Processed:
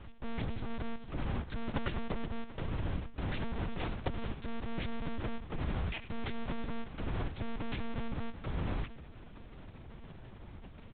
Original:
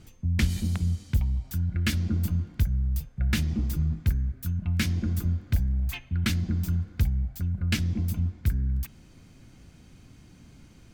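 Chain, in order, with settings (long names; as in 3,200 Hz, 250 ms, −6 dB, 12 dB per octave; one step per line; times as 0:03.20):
each half-wave held at its own peak
parametric band 340 Hz −4 dB 0.92 octaves
downward compressor 16 to 1, threshold −26 dBFS, peak gain reduction 10.5 dB
0:01.68–0:02.31: transient designer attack +6 dB, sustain −4 dB
0:03.64–0:04.30: frequency shifter −21 Hz
harmonic generator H 3 −17 dB, 4 −40 dB, 6 −44 dB, 7 −20 dB, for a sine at −5.5 dBFS
on a send: echo with shifted repeats 95 ms, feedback 47%, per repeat −98 Hz, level −15.5 dB
on the sum: one-pitch LPC vocoder at 8 kHz 230 Hz
level +16 dB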